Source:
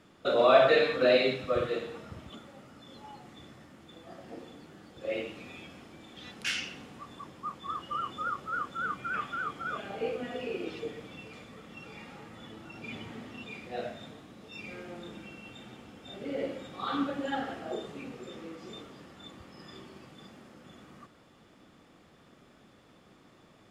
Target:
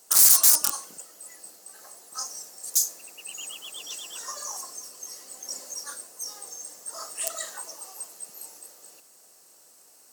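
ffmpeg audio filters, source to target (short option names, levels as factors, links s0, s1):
-af "aeval=exprs='(mod(10.6*val(0)+1,2)-1)/10.6':c=same,aexciter=amount=10.4:drive=4.5:freq=2100,highpass=f=84:p=1,asetrate=103194,aresample=44100,volume=0.473"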